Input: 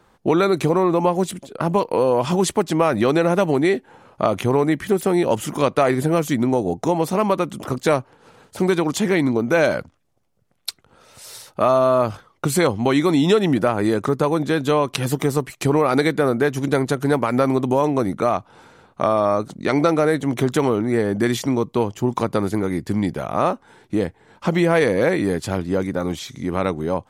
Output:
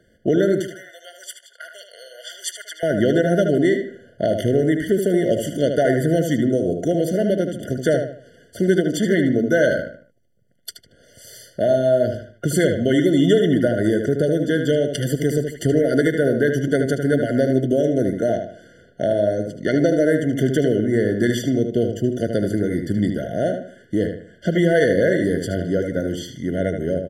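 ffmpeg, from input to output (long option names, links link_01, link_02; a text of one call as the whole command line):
ffmpeg -i in.wav -filter_complex "[0:a]asettb=1/sr,asplit=3[link_01][link_02][link_03];[link_01]atrim=end=0.604[link_04];[link_02]atrim=start=0.6:end=2.83,asetpts=PTS-STARTPTS,afade=type=in:duration=0.004:curve=qsin,afade=type=out:start_time=2.226:duration=0.004:curve=qsin,highpass=frequency=1100:width=0.5412,highpass=frequency=1100:width=1.3066[link_05];[link_03]atrim=start=2.826[link_06];[link_04][link_05]acrossfade=duration=0.004:curve1=hsin:curve2=qsin[link_07];[link_07][link_06]acrossfade=duration=0.004:curve1=qsin:curve2=hsin,asplit=2[link_08][link_09];[link_09]adelay=76,lowpass=frequency=4200:poles=1,volume=-6dB,asplit=2[link_10][link_11];[link_11]adelay=76,lowpass=frequency=4200:poles=1,volume=0.36,asplit=2[link_12][link_13];[link_13]adelay=76,lowpass=frequency=4200:poles=1,volume=0.36,asplit=2[link_14][link_15];[link_15]adelay=76,lowpass=frequency=4200:poles=1,volume=0.36[link_16];[link_08][link_10][link_12][link_14][link_16]amix=inputs=5:normalize=0,afftfilt=real='re*eq(mod(floor(b*sr/1024/710),2),0)':imag='im*eq(mod(floor(b*sr/1024/710),2),0)':win_size=1024:overlap=0.75" out.wav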